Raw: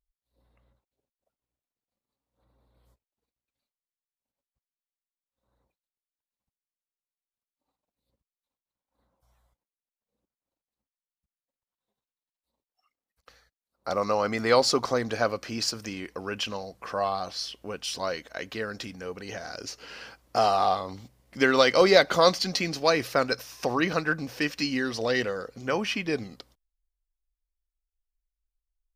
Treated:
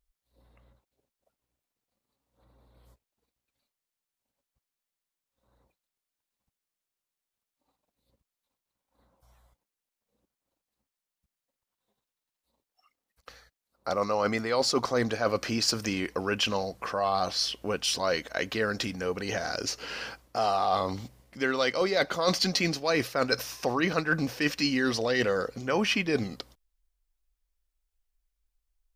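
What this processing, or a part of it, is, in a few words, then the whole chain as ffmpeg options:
compression on the reversed sound: -af "areverse,acompressor=threshold=-28dB:ratio=20,areverse,volume=6dB"

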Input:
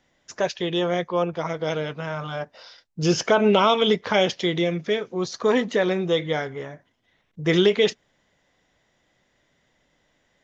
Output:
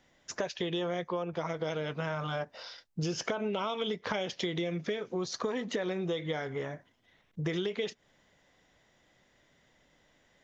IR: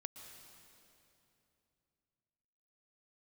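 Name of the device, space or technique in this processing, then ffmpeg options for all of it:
serial compression, peaks first: -af "acompressor=threshold=-25dB:ratio=6,acompressor=threshold=-33dB:ratio=2"

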